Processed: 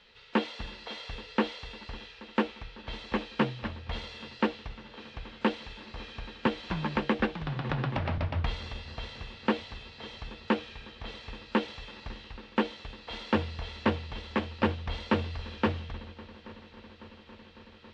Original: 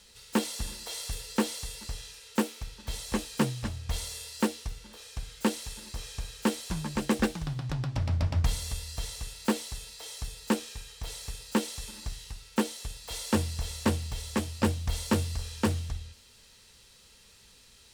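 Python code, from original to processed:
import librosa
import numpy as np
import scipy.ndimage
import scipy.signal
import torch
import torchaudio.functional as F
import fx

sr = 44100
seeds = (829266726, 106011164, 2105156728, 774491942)

y = scipy.signal.sosfilt(scipy.signal.butter(4, 3300.0, 'lowpass', fs=sr, output='sos'), x)
y = fx.low_shelf(y, sr, hz=260.0, db=-8.5)
y = fx.hum_notches(y, sr, base_hz=60, count=2)
y = fx.echo_heads(y, sr, ms=276, heads='second and third', feedback_pct=75, wet_db=-22.0)
y = fx.band_squash(y, sr, depth_pct=70, at=(6.46, 8.18))
y = y * librosa.db_to_amplitude(3.5)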